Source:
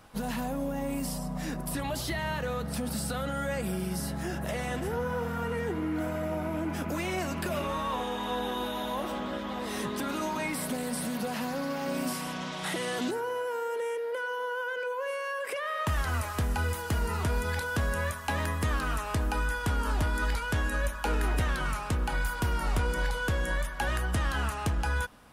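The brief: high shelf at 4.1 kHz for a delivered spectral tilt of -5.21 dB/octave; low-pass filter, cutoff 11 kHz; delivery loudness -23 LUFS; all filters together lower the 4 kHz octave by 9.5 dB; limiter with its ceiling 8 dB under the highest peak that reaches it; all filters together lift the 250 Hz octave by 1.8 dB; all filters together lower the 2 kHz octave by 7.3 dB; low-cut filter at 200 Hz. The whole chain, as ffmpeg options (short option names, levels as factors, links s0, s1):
-af "highpass=200,lowpass=11000,equalizer=f=250:t=o:g=4.5,equalizer=f=2000:t=o:g=-8.5,equalizer=f=4000:t=o:g=-5,highshelf=f=4100:g=-7.5,volume=4.47,alimiter=limit=0.188:level=0:latency=1"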